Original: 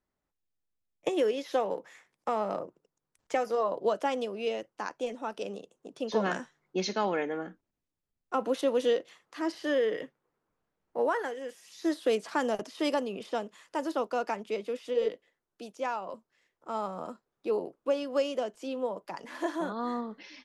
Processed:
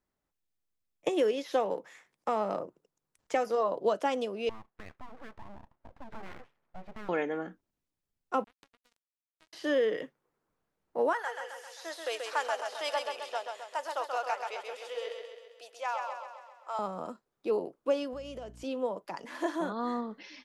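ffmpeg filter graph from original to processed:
-filter_complex "[0:a]asettb=1/sr,asplit=3[s0][s1][s2];[s0]atrim=end=4.494[s3];[s1]atrim=start=4.49:end=7.09,asetpts=PTS-STARTPTS,afade=t=in:d=0.004:c=qsin,afade=t=out:st=2.596:d=0.004:c=qsin,lowpass=f=1500:w=0.5412,lowpass=f=1500:w=1.3066,acompressor=threshold=0.00631:ratio=2.5:attack=3.2:release=140:knee=1:detection=peak,aeval=exprs='abs(val(0))':c=same[s4];[s2]atrim=start=7.086[s5];[s3][s4]acrossfade=d=0.004:c1=hsin:c2=qsin[s6];[s6][s5]acrossfade=d=0.004:c1=qsin:c2=hsin,asettb=1/sr,asplit=3[s7][s8][s9];[s7]atrim=end=8.444[s10];[s8]atrim=start=8.44:end=9.53,asetpts=PTS-STARTPTS,afade=t=in:d=0.004:c=qsin,afade=t=out:st=1.086:d=0.004:c=qsin,acompressor=threshold=0.0282:ratio=8:attack=3.2:release=140:knee=1:detection=peak,acrusher=bits=3:mix=0:aa=0.5[s11];[s9]atrim=start=9.526[s12];[s10][s11]acrossfade=d=0.004:c1=hsin:c2=qsin[s13];[s13][s12]acrossfade=d=0.004:c1=qsin:c2=hsin,asettb=1/sr,asplit=3[s14][s15][s16];[s14]atrim=end=11.134[s17];[s15]atrim=start=11.13:end=16.79,asetpts=PTS-STARTPTS,afade=t=in:d=0.004:c=qsin,afade=t=out:st=5.656:d=0.004:c=qsin,highpass=f=630:w=0.5412,highpass=f=630:w=1.3066,aecho=1:1:132|264|396|528|660|792|924:0.562|0.309|0.17|0.0936|0.0515|0.0283|0.0156,atrim=end_sample=249606[s18];[s16]atrim=start=16.786[s19];[s17][s18]acrossfade=d=0.004:c1=hsin:c2=qsin[s20];[s20][s19]acrossfade=d=0.004:c1=qsin:c2=hsin,asettb=1/sr,asplit=3[s21][s22][s23];[s21]atrim=end=18.134[s24];[s22]atrim=start=18.13:end=18.64,asetpts=PTS-STARTPTS,afade=t=in:d=0.004:c=qsin,afade=t=out:st=0.506:d=0.004:c=qsin,acompressor=threshold=0.0112:ratio=6:attack=3.2:release=140:knee=1:detection=peak,aeval=exprs='val(0)+0.00282*(sin(2*PI*60*n/s)+sin(2*PI*2*60*n/s)/2+sin(2*PI*3*60*n/s)/3+sin(2*PI*4*60*n/s)/4+sin(2*PI*5*60*n/s)/5)':c=same[s25];[s23]atrim=start=18.636[s26];[s24][s25]acrossfade=d=0.004:c1=hsin:c2=qsin[s27];[s27][s26]acrossfade=d=0.004:c1=qsin:c2=hsin"

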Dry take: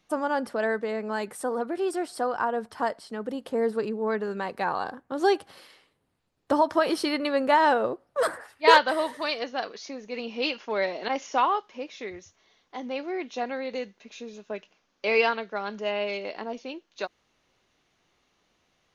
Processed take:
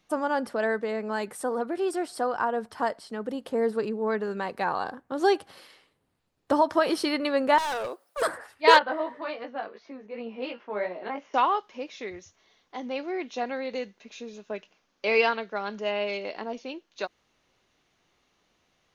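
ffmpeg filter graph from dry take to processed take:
-filter_complex "[0:a]asettb=1/sr,asplit=3[s0][s1][s2];[s0]atrim=end=7.584[s3];[s1]atrim=start=7.58:end=8.22,asetpts=PTS-STARTPTS,afade=t=in:d=0.004:c=qsin,afade=t=out:st=0.636:d=0.004:c=qsin,highpass=f=370:p=1,aemphasis=mode=production:type=riaa,asoftclip=type=hard:threshold=0.0398[s4];[s2]atrim=start=8.216[s5];[s3][s4]acrossfade=d=0.004:c1=hsin:c2=qsin[s6];[s6][s5]acrossfade=d=0.004:c1=qsin:c2=hsin,asettb=1/sr,asplit=3[s7][s8][s9];[s7]atrim=end=8.794[s10];[s8]atrim=start=8.79:end=11.34,asetpts=PTS-STARTPTS,afade=t=in:d=0.004:c=qsin,afade=t=out:st=2.546:d=0.004:c=qsin,lowpass=1900,lowshelf=f=75:g=-10,flanger=delay=16.5:depth=3.3:speed=2.8[s11];[s9]atrim=start=11.336[s12];[s10][s11]acrossfade=d=0.004:c1=hsin:c2=qsin[s13];[s13][s12]acrossfade=d=0.004:c1=qsin:c2=hsin"

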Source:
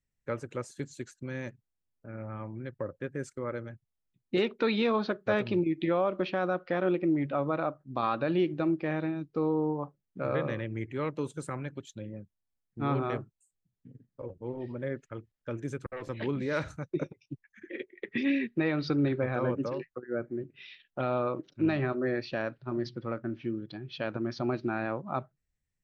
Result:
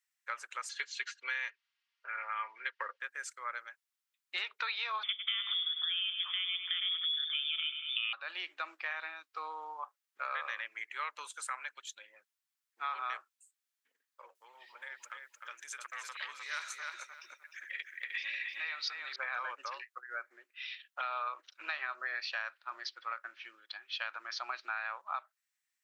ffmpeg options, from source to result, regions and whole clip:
-filter_complex "[0:a]asettb=1/sr,asplit=3[s0][s1][s2];[s0]atrim=end=0.694[s3];[s1]atrim=start=0.69:end=3,asetpts=PTS-STARTPTS,afade=t=in:d=0.004:c=qsin,afade=t=out:st=2.306:d=0.004:c=qsin,aecho=1:1:4.3:0.46,atrim=end_sample=101871,acontrast=83,highpass=320,equalizer=f=390:t=q:w=4:g=8,equalizer=f=700:t=q:w=4:g=-6,equalizer=f=2000:t=q:w=4:g=4,equalizer=f=2900:t=q:w=4:g=6,lowpass=f=5000:w=0.5412,lowpass=f=5000:w=1.3066[s4];[s2]atrim=start=2.996[s5];[s3][s4]acrossfade=d=0.004:c1=hsin:c2=qsin[s6];[s6][s5]acrossfade=d=0.004:c1=qsin:c2=hsin,asettb=1/sr,asplit=3[s7][s8][s9];[s7]atrim=end=5.034[s10];[s8]atrim=start=5.03:end=8.13,asetpts=PTS-STARTPTS,afade=t=in:d=0.004:c=qsin,afade=t=out:st=3.096:d=0.004:c=qsin,aecho=1:1:99|198|297|396|495|594:0.316|0.177|0.0992|0.0555|0.0311|0.0174,atrim=end_sample=136710,lowpass=f=3100:t=q:w=0.5098,lowpass=f=3100:t=q:w=0.6013,lowpass=f=3100:t=q:w=0.9,lowpass=f=3100:t=q:w=2.563,afreqshift=-3700[s11];[s9]atrim=start=8.126[s12];[s10][s11]acrossfade=d=0.004:c1=hsin:c2=qsin[s13];[s13][s12]acrossfade=d=0.004:c1=qsin:c2=hsin,asettb=1/sr,asplit=3[s14][s15][s16];[s14]atrim=end=14.354[s17];[s15]atrim=start=14.35:end=19.16,asetpts=PTS-STARTPTS,afade=t=in:d=0.004:c=qsin,afade=t=out:st=4.806:d=0.004:c=qsin,acompressor=threshold=0.00708:ratio=2:attack=3.2:release=140:knee=1:detection=peak,highshelf=f=3100:g=10.5,asplit=2[s18][s19];[s19]adelay=306,lowpass=f=4200:p=1,volume=0.631,asplit=2[s20][s21];[s21]adelay=306,lowpass=f=4200:p=1,volume=0.24,asplit=2[s22][s23];[s23]adelay=306,lowpass=f=4200:p=1,volume=0.24[s24];[s18][s20][s22][s24]amix=inputs=4:normalize=0,atrim=end_sample=212121[s25];[s16]atrim=start=19.156[s26];[s17][s25]acrossfade=d=0.004:c1=hsin:c2=qsin[s27];[s27][s26]acrossfade=d=0.004:c1=qsin:c2=hsin,highpass=f=1100:w=0.5412,highpass=f=1100:w=1.3066,acompressor=threshold=0.0112:ratio=6,volume=2"

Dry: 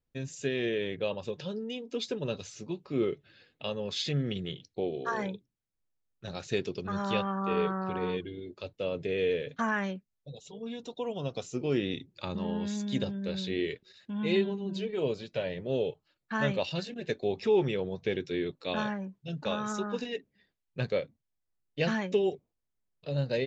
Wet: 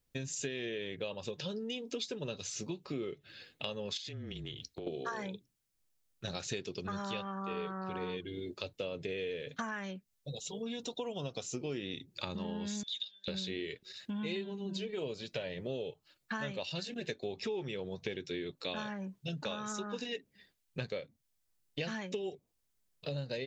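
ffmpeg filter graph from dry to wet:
-filter_complex "[0:a]asettb=1/sr,asplit=3[s0][s1][s2];[s0]atrim=end=3.974[s3];[s1]atrim=start=3.97:end=4.87,asetpts=PTS-STARTPTS,afade=t=in:d=0.004:c=qsin,afade=t=out:st=0.896:d=0.004:c=qsin,acompressor=threshold=0.00708:ratio=6:attack=3.2:release=140:knee=1:detection=peak,afreqshift=-27[s4];[s2]atrim=start=4.866[s5];[s3][s4]acrossfade=d=0.004:c1=hsin:c2=qsin[s6];[s6][s5]acrossfade=d=0.004:c1=qsin:c2=hsin,asettb=1/sr,asplit=3[s7][s8][s9];[s7]atrim=end=12.834[s10];[s8]atrim=start=12.83:end=13.28,asetpts=PTS-STARTPTS,afade=t=in:d=0.004:c=qsin,afade=t=out:st=0.446:d=0.004:c=qsin,bandpass=f=3600:t=q:w=7.6,aemphasis=mode=production:type=riaa[s11];[s9]atrim=start=13.276[s12];[s10][s11]acrossfade=d=0.004:c1=hsin:c2=qsin[s13];[s13][s12]acrossfade=d=0.004:c1=qsin:c2=hsin,highshelf=f=2900:g=9,acompressor=threshold=0.0112:ratio=6,volume=1.41"

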